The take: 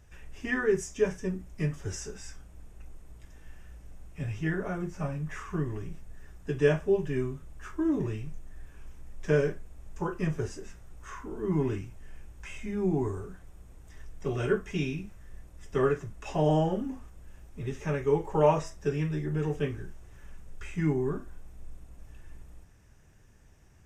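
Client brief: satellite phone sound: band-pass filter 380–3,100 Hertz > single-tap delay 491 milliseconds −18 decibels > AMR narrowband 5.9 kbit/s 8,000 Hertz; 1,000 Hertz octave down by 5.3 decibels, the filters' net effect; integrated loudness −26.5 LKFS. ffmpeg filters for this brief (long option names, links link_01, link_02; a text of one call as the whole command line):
ffmpeg -i in.wav -af "highpass=380,lowpass=3100,equalizer=frequency=1000:width_type=o:gain=-6.5,aecho=1:1:491:0.126,volume=9.5dB" -ar 8000 -c:a libopencore_amrnb -b:a 5900 out.amr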